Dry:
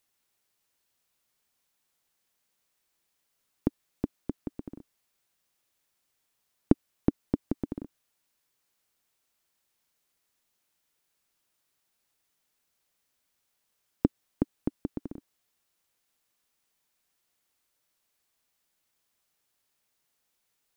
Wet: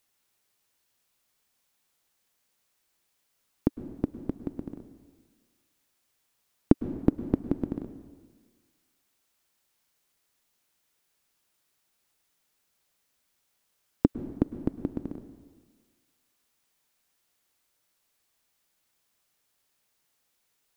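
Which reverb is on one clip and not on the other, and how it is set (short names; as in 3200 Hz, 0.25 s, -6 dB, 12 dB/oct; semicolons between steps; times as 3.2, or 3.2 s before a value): plate-style reverb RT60 1.5 s, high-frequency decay 0.85×, pre-delay 95 ms, DRR 11.5 dB; gain +2.5 dB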